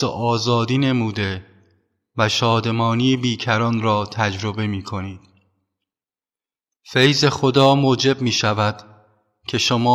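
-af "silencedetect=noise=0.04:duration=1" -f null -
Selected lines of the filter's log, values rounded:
silence_start: 5.12
silence_end: 6.92 | silence_duration: 1.80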